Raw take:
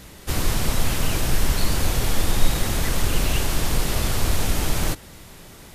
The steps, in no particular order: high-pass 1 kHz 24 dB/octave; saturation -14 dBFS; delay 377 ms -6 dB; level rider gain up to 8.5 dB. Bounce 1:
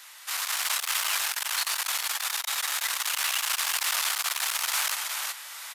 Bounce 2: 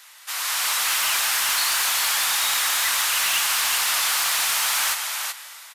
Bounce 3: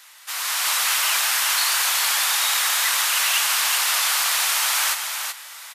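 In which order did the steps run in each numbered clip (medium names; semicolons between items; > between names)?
delay > level rider > saturation > high-pass; high-pass > level rider > delay > saturation; high-pass > saturation > delay > level rider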